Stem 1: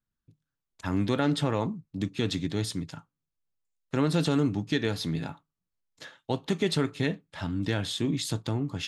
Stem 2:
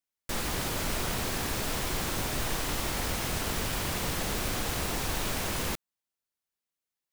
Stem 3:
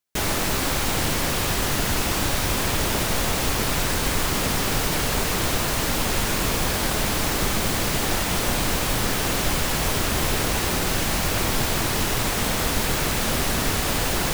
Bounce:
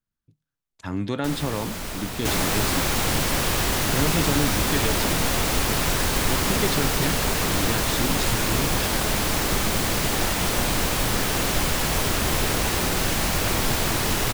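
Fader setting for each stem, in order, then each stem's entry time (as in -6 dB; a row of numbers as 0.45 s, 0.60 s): -0.5 dB, -1.0 dB, 0.0 dB; 0.00 s, 0.95 s, 2.10 s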